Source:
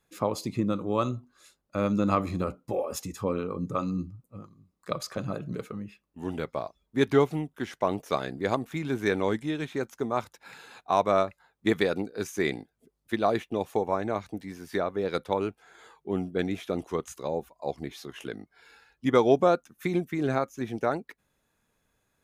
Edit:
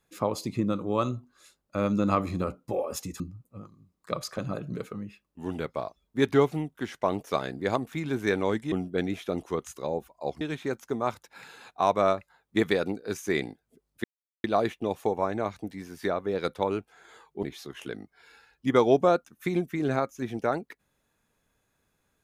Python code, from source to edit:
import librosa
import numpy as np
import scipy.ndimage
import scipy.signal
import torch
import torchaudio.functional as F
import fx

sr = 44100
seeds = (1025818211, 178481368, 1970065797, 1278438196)

y = fx.edit(x, sr, fx.cut(start_s=3.2, length_s=0.79),
    fx.insert_silence(at_s=13.14, length_s=0.4),
    fx.move(start_s=16.13, length_s=1.69, to_s=9.51), tone=tone)